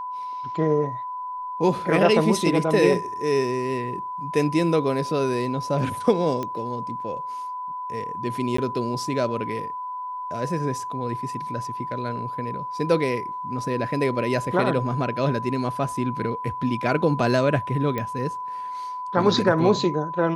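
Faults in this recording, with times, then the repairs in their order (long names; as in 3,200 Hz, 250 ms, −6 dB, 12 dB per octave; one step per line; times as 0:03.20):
whistle 1,000 Hz −29 dBFS
0:06.43: click −16 dBFS
0:08.57–0:08.58: drop-out 14 ms
0:17.98: click −15 dBFS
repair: click removal
notch filter 1,000 Hz, Q 30
repair the gap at 0:08.57, 14 ms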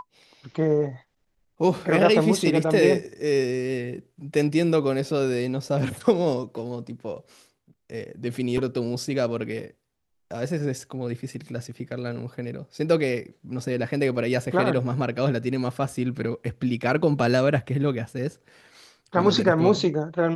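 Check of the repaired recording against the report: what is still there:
none of them is left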